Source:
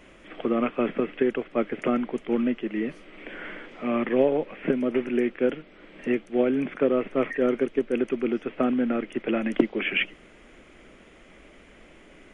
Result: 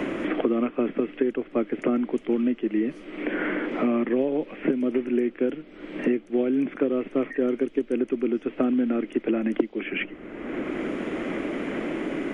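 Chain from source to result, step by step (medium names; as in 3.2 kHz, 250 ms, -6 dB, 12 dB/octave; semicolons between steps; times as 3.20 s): peaking EQ 300 Hz +9 dB 0.96 oct; three bands compressed up and down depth 100%; trim -5.5 dB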